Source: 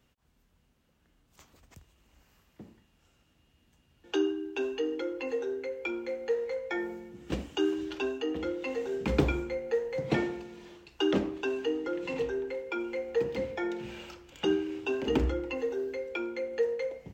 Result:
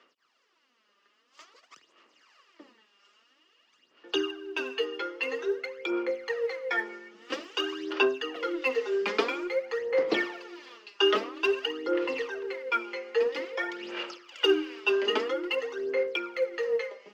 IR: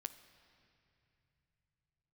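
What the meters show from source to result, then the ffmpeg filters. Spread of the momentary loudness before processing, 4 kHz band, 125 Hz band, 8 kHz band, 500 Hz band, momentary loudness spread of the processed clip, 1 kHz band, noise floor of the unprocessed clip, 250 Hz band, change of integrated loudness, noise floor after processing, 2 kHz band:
7 LU, +9.5 dB, below −20 dB, can't be measured, +2.5 dB, 9 LU, +6.0 dB, −69 dBFS, −3.0 dB, +3.0 dB, −70 dBFS, +8.0 dB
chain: -af "highpass=frequency=350:width=0.5412,highpass=frequency=350:width=1.3066,equalizer=frequency=780:width_type=q:width=4:gain=-4,equalizer=frequency=1200:width_type=q:width=4:gain=10,equalizer=frequency=1900:width_type=q:width=4:gain=6,equalizer=frequency=2900:width_type=q:width=4:gain=6,equalizer=frequency=4900:width_type=q:width=4:gain=8,lowpass=frequency=6500:width=0.5412,lowpass=frequency=6500:width=1.3066,aphaser=in_gain=1:out_gain=1:delay=5:decay=0.68:speed=0.5:type=sinusoidal"

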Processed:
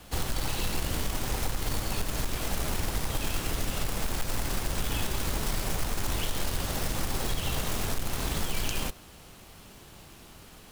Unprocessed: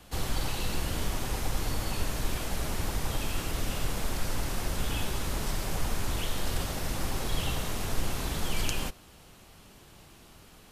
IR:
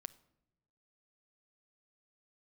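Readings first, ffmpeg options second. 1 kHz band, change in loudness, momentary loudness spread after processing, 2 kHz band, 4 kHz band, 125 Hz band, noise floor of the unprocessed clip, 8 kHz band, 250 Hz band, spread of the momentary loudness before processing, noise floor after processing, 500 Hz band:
+1.0 dB, +1.5 dB, 18 LU, +1.5 dB, +1.5 dB, +0.5 dB, −54 dBFS, +2.5 dB, +0.5 dB, 2 LU, −51 dBFS, +1.0 dB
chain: -af "acompressor=threshold=-28dB:ratio=6,acrusher=bits=2:mode=log:mix=0:aa=0.000001,volume=3dB"

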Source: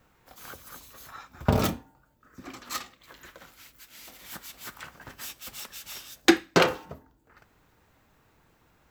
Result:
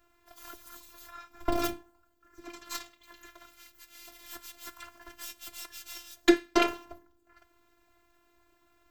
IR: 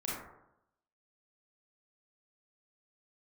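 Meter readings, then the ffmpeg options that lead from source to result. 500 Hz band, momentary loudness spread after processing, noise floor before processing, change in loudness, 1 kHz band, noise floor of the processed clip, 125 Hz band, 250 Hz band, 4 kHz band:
−3.0 dB, 24 LU, −65 dBFS, −3.5 dB, −3.5 dB, −69 dBFS, below −15 dB, −2.0 dB, −5.0 dB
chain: -af "aeval=exprs='if(lt(val(0),0),0.708*val(0),val(0))':channel_layout=same,afftfilt=real='hypot(re,im)*cos(PI*b)':imag='0':win_size=512:overlap=0.75,asoftclip=type=tanh:threshold=-6dB,volume=1.5dB"

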